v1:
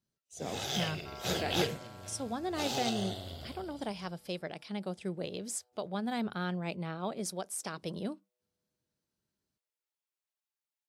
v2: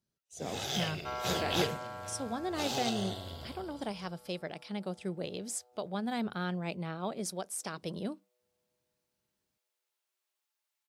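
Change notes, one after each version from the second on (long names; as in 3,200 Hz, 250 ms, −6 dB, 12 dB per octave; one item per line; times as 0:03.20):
second sound +10.0 dB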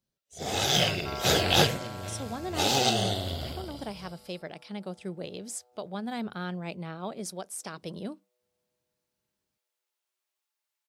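first sound +10.5 dB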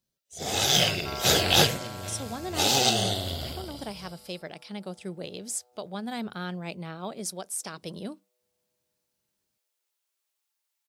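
master: add high-shelf EQ 3,800 Hz +6.5 dB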